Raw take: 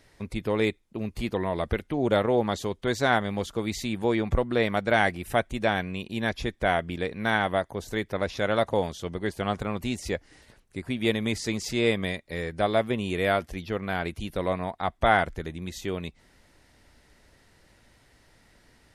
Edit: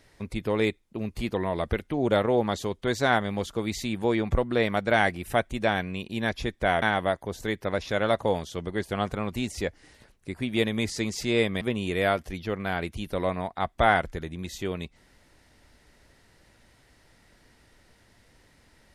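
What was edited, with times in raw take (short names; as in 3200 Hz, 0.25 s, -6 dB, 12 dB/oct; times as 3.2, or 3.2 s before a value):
6.82–7.3 cut
12.09–12.84 cut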